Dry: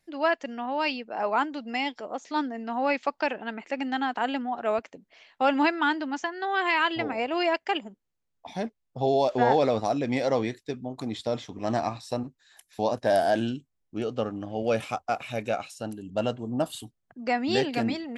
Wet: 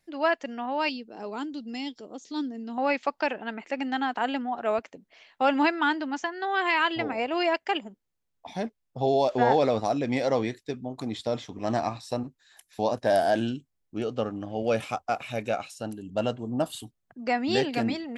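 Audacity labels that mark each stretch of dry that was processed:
0.890000	2.780000	flat-topped bell 1,200 Hz −13 dB 2.5 octaves

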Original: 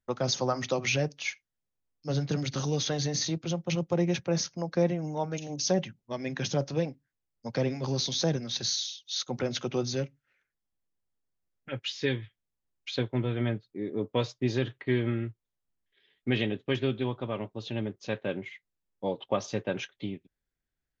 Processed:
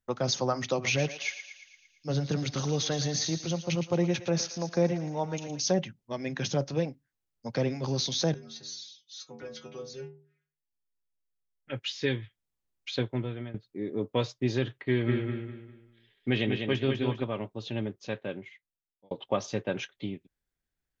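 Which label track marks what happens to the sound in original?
0.730000	5.600000	feedback echo with a high-pass in the loop 114 ms, feedback 61%, high-pass 820 Hz, level −10 dB
8.340000	11.700000	stiff-string resonator 73 Hz, decay 0.56 s, inharmonicity 0.008
13.040000	13.540000	fade out, to −16.5 dB
14.790000	17.240000	repeating echo 200 ms, feedback 33%, level −5 dB
17.860000	19.110000	fade out

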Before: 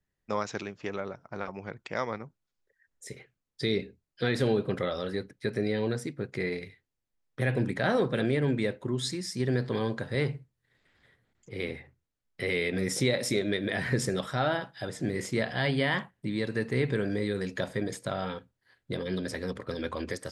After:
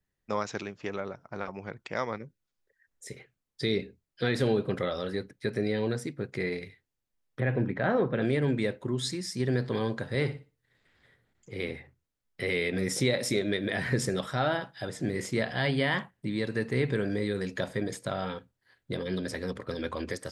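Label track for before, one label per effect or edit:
2.180000	2.400000	gain on a spectral selection 590–1,400 Hz −16 dB
7.400000	8.220000	low-pass filter 2,100 Hz
10.150000	11.590000	flutter between parallel walls apart 10.2 metres, dies away in 0.3 s

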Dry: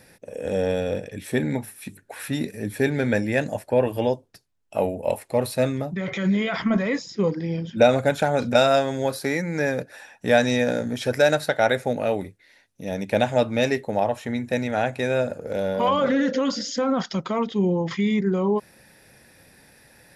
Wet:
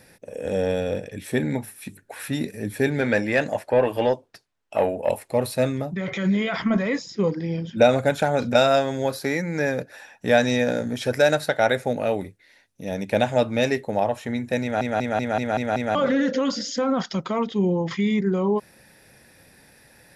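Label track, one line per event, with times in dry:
3.010000	5.090000	mid-hump overdrive drive 12 dB, tone 2,800 Hz, clips at −8.5 dBFS
8.350000	10.770000	parametric band 9,100 Hz −6.5 dB 0.23 octaves
14.620000	14.620000	stutter in place 0.19 s, 7 plays

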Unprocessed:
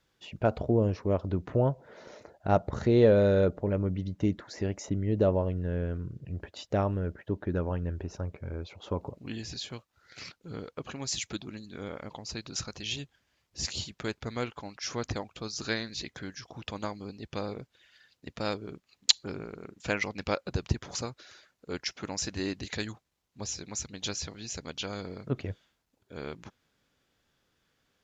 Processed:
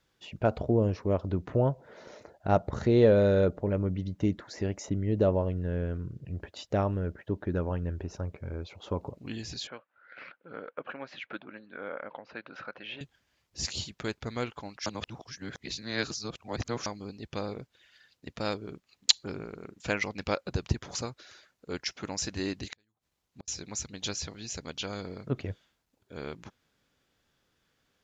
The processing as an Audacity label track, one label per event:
9.670000	13.010000	loudspeaker in its box 320–2,600 Hz, peaks and dips at 380 Hz −5 dB, 550 Hz +6 dB, 1,500 Hz +9 dB
14.860000	16.860000	reverse
22.710000	23.480000	gate with flip shuts at −30 dBFS, range −40 dB

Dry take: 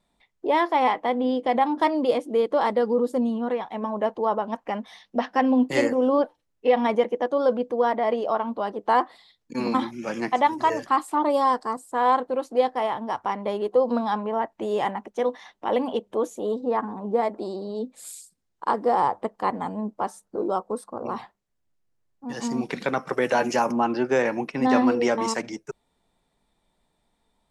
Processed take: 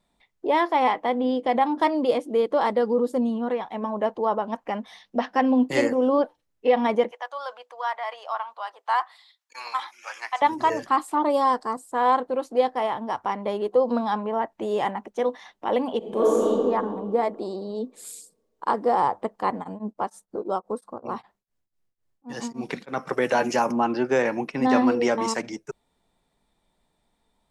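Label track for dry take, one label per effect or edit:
7.110000	10.420000	high-pass filter 870 Hz 24 dB per octave
15.980000	16.460000	thrown reverb, RT60 2.2 s, DRR −7 dB
19.600000	23.010000	tremolo along a rectified sine nulls at 7.1 Hz → 2.8 Hz

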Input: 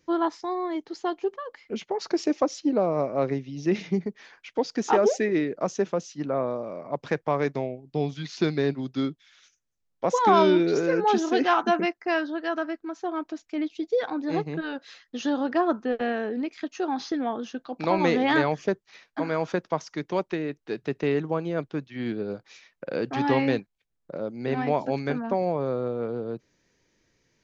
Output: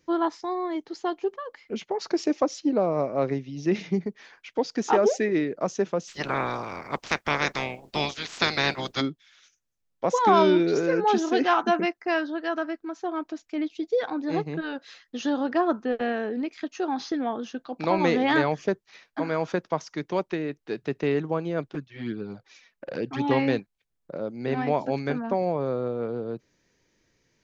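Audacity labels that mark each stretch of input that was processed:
6.070000	9.000000	ceiling on every frequency bin ceiling under each frame's peak by 29 dB
21.730000	23.310000	flanger swept by the level delay at rest 5.6 ms, full sweep at −22.5 dBFS

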